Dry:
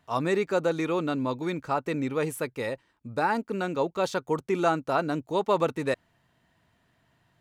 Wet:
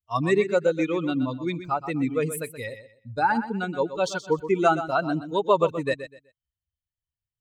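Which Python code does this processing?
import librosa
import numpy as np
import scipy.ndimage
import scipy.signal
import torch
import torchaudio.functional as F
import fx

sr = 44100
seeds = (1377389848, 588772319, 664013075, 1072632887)

y = fx.bin_expand(x, sr, power=2.0)
y = fx.echo_feedback(y, sr, ms=125, feedback_pct=24, wet_db=-11.5)
y = y * 10.0 ** (7.0 / 20.0)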